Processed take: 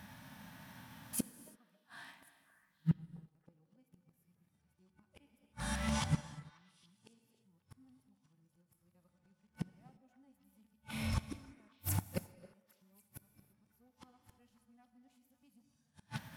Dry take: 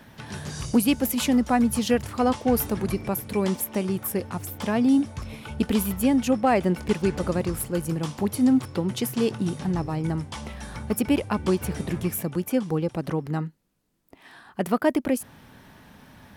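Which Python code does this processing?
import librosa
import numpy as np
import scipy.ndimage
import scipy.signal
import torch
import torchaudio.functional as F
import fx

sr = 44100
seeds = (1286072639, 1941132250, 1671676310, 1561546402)

p1 = x[::-1].copy()
p2 = fx.highpass(p1, sr, hz=110.0, slope=6)
p3 = fx.peak_eq(p2, sr, hz=410.0, db=-12.5, octaves=0.76)
p4 = fx.hpss(p3, sr, part='percussive', gain_db=-12)
p5 = fx.high_shelf(p4, sr, hz=8800.0, db=4.0)
p6 = np.clip(10.0 ** (23.5 / 20.0) * p5, -1.0, 1.0) / 10.0 ** (23.5 / 20.0)
p7 = p5 + (p6 * 10.0 ** (-6.0 / 20.0))
p8 = fx.gate_flip(p7, sr, shuts_db=-26.0, range_db=-38)
p9 = p8 + fx.echo_stepped(p8, sr, ms=273, hz=550.0, octaves=1.4, feedback_pct=70, wet_db=-10.0, dry=0)
p10 = fx.rev_gated(p9, sr, seeds[0], gate_ms=370, shape='flat', drr_db=8.5)
p11 = fx.upward_expand(p10, sr, threshold_db=-56.0, expansion=1.5)
y = p11 * 10.0 ** (6.0 / 20.0)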